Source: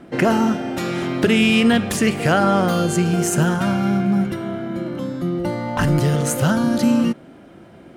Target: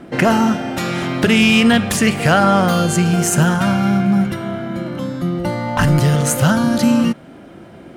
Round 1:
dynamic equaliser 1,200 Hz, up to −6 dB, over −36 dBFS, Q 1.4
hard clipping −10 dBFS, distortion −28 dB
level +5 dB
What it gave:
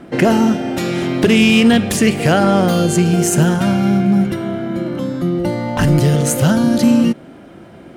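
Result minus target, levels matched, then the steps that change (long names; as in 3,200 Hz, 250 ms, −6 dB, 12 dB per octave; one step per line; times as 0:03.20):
1,000 Hz band −3.5 dB
change: dynamic equaliser 360 Hz, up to −6 dB, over −36 dBFS, Q 1.4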